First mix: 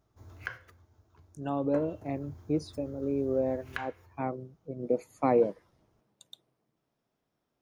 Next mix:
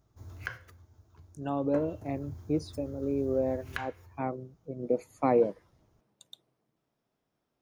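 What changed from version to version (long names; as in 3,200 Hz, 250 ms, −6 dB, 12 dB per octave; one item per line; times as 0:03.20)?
background: add bass and treble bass +5 dB, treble +5 dB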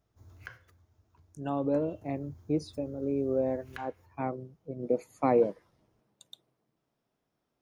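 background −8.0 dB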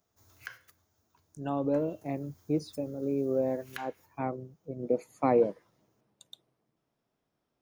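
background: add spectral tilt +3.5 dB per octave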